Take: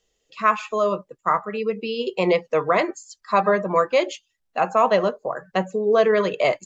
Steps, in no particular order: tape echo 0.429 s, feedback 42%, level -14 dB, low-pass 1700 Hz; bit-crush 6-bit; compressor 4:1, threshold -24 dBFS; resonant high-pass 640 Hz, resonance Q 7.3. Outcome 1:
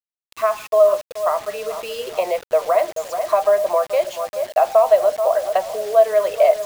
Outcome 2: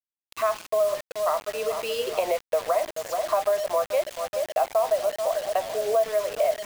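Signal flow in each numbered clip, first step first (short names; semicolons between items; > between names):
tape echo > compressor > resonant high-pass > bit-crush; tape echo > resonant high-pass > compressor > bit-crush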